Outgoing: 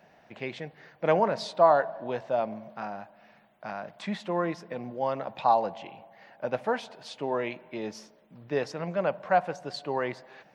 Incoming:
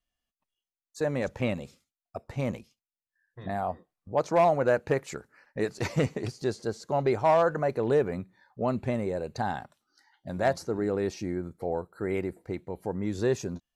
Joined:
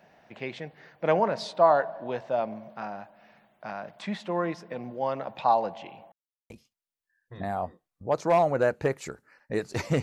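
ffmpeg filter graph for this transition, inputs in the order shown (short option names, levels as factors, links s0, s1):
-filter_complex "[0:a]apad=whole_dur=10.02,atrim=end=10.02,asplit=2[s0][s1];[s0]atrim=end=6.12,asetpts=PTS-STARTPTS,afade=t=out:st=6.116:d=0.004:c=hsin[s2];[s1]atrim=start=6.12:end=6.5,asetpts=PTS-STARTPTS,volume=0[s3];[1:a]atrim=start=2.56:end=6.08,asetpts=PTS-STARTPTS,afade=t=in:d=0.004:c=hsin[s4];[s2][s3][s4]concat=n=3:v=0:a=1"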